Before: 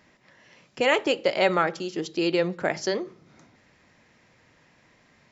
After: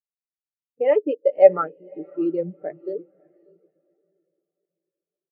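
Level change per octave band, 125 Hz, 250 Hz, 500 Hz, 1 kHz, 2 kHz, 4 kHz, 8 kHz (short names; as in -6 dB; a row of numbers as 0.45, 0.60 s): -5.0 dB, -0.5 dB, +6.0 dB, -2.0 dB, -13.0 dB, under -20 dB, n/a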